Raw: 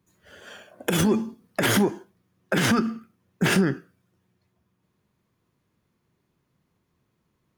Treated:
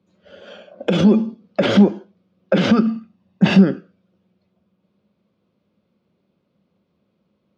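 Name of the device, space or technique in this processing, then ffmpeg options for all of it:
guitar cabinet: -filter_complex "[0:a]asettb=1/sr,asplit=3[a][b][c];[a]atrim=end=2.874[d];[b]atrim=start=2.87:end=3.59,asetpts=PTS-STARTPTS,afade=t=in:d=0.004:c=qsin,afade=t=out:st=0.716:d=0.004:c=qsin,aecho=1:1:1.1:0.58,atrim=end_sample=31752[e];[c]atrim=start=3.586[f];[d][e]acrossfade=d=0.004:c1=hsin:c2=qsin[g];[g][f]acrossfade=d=0.004:c1=qsin:c2=hsin,highpass=95,equalizer=f=130:t=q:w=4:g=-8,equalizer=f=200:t=q:w=4:g=9,equalizer=f=550:t=q:w=4:g=10,equalizer=f=990:t=q:w=4:g=-5,equalizer=f=1.8k:t=q:w=4:g=-10,lowpass=f=4.5k:w=0.5412,lowpass=f=4.5k:w=1.3066,volume=3.5dB"

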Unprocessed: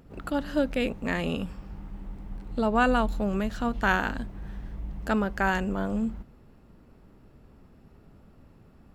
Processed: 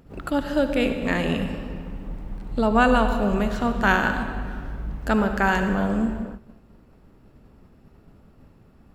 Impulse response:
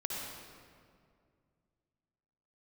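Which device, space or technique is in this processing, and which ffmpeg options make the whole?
keyed gated reverb: -filter_complex "[0:a]asplit=3[a][b][c];[1:a]atrim=start_sample=2205[d];[b][d]afir=irnorm=-1:irlink=0[e];[c]apad=whole_len=394263[f];[e][f]sidechaingate=range=-33dB:threshold=-50dB:ratio=16:detection=peak,volume=-4.5dB[g];[a][g]amix=inputs=2:normalize=0,volume=1dB"

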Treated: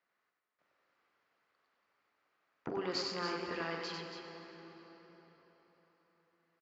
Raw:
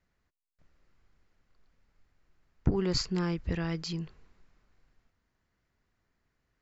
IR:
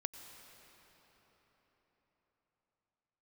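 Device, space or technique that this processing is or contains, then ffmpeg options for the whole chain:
station announcement: -filter_complex "[0:a]highpass=480,lowpass=4k,equalizer=f=1.2k:t=o:w=0.37:g=4,aecho=1:1:43.73|96.21|279.9:0.316|0.631|0.398[a];[1:a]atrim=start_sample=2205[b];[a][b]afir=irnorm=-1:irlink=0"

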